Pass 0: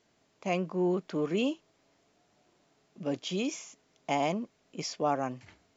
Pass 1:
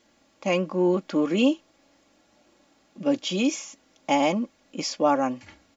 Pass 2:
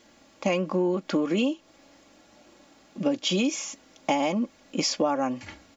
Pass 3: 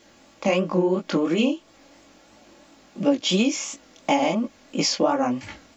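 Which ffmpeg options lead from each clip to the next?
-af "aecho=1:1:3.6:0.64,volume=6dB"
-af "acompressor=threshold=-27dB:ratio=12,volume=6dB"
-af "flanger=delay=17.5:depth=7.1:speed=2.9,volume=6.5dB"

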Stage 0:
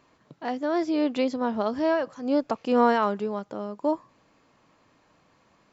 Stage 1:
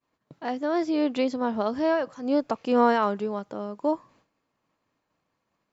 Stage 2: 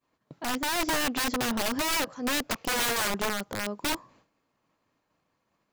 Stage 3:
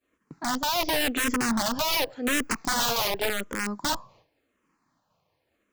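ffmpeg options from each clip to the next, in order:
-af "agate=range=-33dB:threshold=-52dB:ratio=3:detection=peak"
-af "aeval=exprs='(mod(15.8*val(0)+1,2)-1)/15.8':c=same,volume=1.5dB"
-filter_complex "[0:a]asplit=2[a][b];[b]afreqshift=-0.9[c];[a][c]amix=inputs=2:normalize=1,volume=5dB"

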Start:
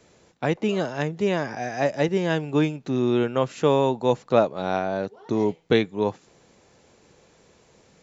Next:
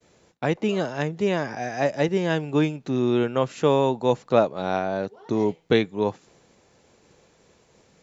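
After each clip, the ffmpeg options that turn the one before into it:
-af "agate=range=-33dB:threshold=-54dB:ratio=3:detection=peak"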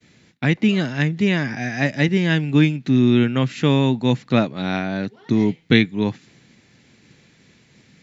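-af "equalizer=f=125:t=o:w=1:g=10,equalizer=f=250:t=o:w=1:g=10,equalizer=f=500:t=o:w=1:g=-6,equalizer=f=1k:t=o:w=1:g=-4,equalizer=f=2k:t=o:w=1:g=11,equalizer=f=4k:t=o:w=1:g=7,volume=-1dB"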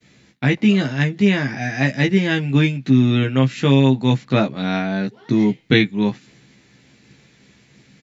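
-filter_complex "[0:a]asplit=2[a][b];[b]adelay=15,volume=-4dB[c];[a][c]amix=inputs=2:normalize=0"

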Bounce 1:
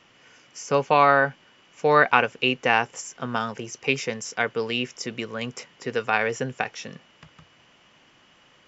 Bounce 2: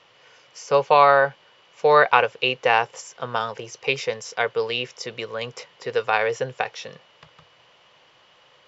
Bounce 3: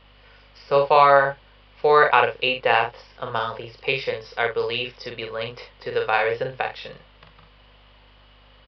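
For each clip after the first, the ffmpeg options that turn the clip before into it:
-af "equalizer=f=125:t=o:w=1:g=6,equalizer=f=250:t=o:w=1:g=-7,equalizer=f=500:t=o:w=1:g=12,equalizer=f=1k:t=o:w=1:g=8,equalizer=f=2k:t=o:w=1:g=3,equalizer=f=4k:t=o:w=1:g=12,volume=-7.5dB"
-af "aresample=11025,aresample=44100,aeval=exprs='val(0)+0.002*(sin(2*PI*50*n/s)+sin(2*PI*2*50*n/s)/2+sin(2*PI*3*50*n/s)/3+sin(2*PI*4*50*n/s)/4+sin(2*PI*5*50*n/s)/5)':c=same,aecho=1:1:43|68:0.562|0.178,volume=-1dB"

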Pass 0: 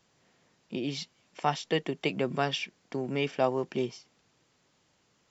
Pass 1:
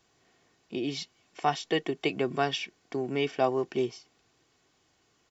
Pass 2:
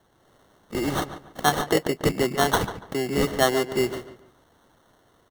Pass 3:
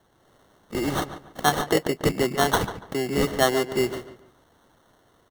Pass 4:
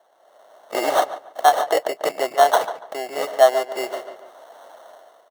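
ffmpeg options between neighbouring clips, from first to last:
-af "aecho=1:1:2.7:0.43"
-filter_complex "[0:a]acrossover=split=180|2200[a][b][c];[c]dynaudnorm=f=200:g=3:m=7dB[d];[a][b][d]amix=inputs=3:normalize=0,acrusher=samples=18:mix=1:aa=0.000001,asplit=2[e][f];[f]adelay=143,lowpass=f=3.1k:p=1,volume=-11.5dB,asplit=2[g][h];[h]adelay=143,lowpass=f=3.1k:p=1,volume=0.29,asplit=2[i][j];[j]adelay=143,lowpass=f=3.1k:p=1,volume=0.29[k];[e][g][i][k]amix=inputs=4:normalize=0,volume=5dB"
-af anull
-af "highpass=f=640:t=q:w=4.9,dynaudnorm=f=150:g=7:m=12.5dB,volume=-1dB"

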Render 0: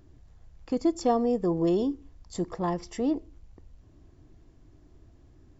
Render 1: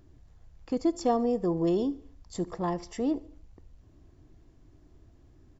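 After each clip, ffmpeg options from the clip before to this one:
-af "aecho=1:1:72|144|216|288:0.0794|0.0413|0.0215|0.0112,volume=-1.5dB"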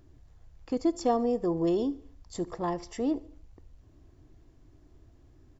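-af "equalizer=f=190:t=o:w=0.3:g=-6"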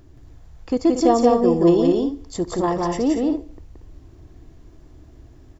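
-af "aecho=1:1:174.9|233.2:0.794|0.398,volume=8.5dB"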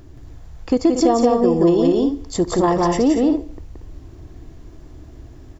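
-af "acompressor=threshold=-18dB:ratio=4,volume=6dB"

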